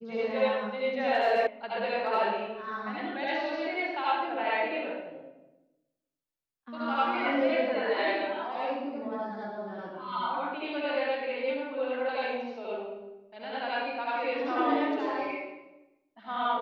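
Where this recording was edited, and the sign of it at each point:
1.47 sound cut off

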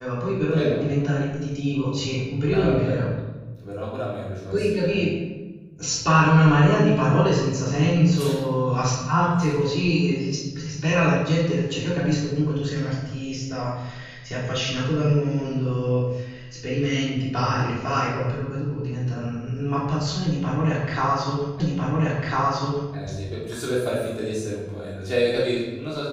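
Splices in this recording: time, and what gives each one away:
21.6 repeat of the last 1.35 s

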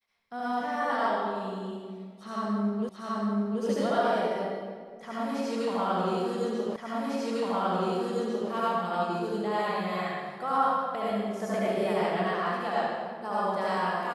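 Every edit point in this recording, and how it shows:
2.89 repeat of the last 0.73 s
6.76 repeat of the last 1.75 s

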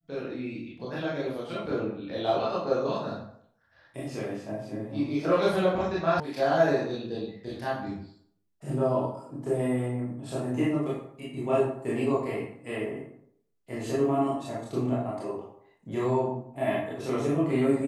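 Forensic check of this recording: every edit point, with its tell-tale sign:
6.2 sound cut off

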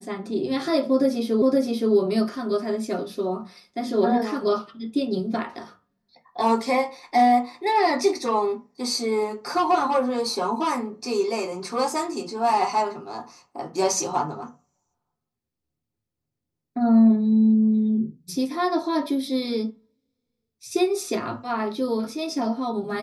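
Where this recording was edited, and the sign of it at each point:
1.42 repeat of the last 0.52 s

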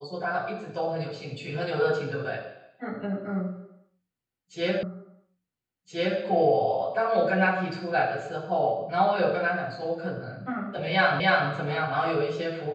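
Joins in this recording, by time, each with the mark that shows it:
4.83 repeat of the last 1.37 s
11.2 repeat of the last 0.29 s

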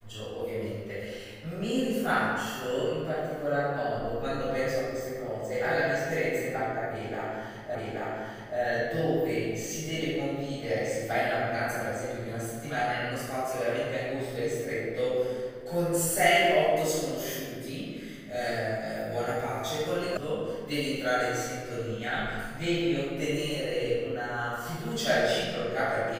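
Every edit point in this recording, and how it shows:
7.75 repeat of the last 0.83 s
20.17 sound cut off

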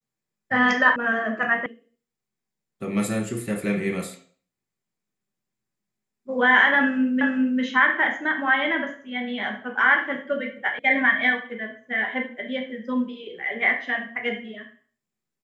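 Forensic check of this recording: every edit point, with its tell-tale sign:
0.96 sound cut off
1.66 sound cut off
7.21 repeat of the last 0.4 s
10.79 sound cut off

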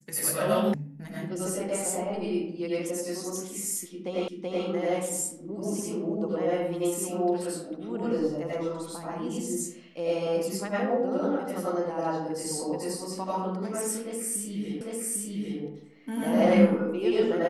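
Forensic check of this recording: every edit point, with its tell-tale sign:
0.74 sound cut off
4.28 repeat of the last 0.38 s
14.81 repeat of the last 0.8 s

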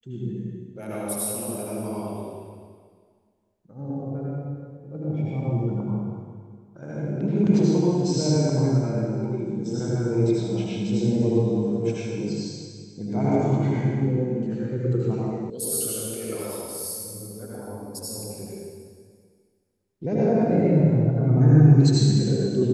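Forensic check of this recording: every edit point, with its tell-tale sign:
15.5 sound cut off

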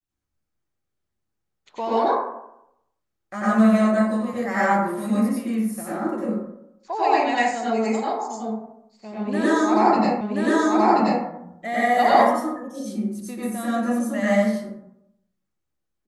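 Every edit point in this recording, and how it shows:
10.21 repeat of the last 1.03 s

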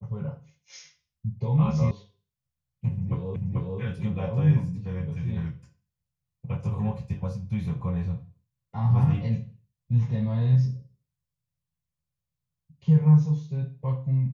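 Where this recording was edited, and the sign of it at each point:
1.91 sound cut off
3.36 repeat of the last 0.44 s

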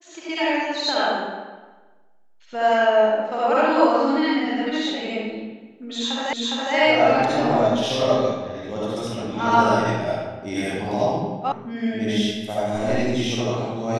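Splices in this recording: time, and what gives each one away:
6.33 repeat of the last 0.41 s
11.52 sound cut off

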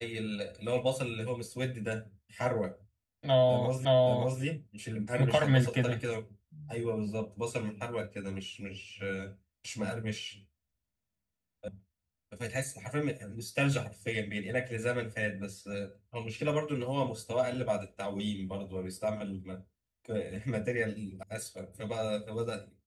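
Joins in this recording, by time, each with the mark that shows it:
3.85 repeat of the last 0.57 s
11.68 sound cut off
21.23 sound cut off

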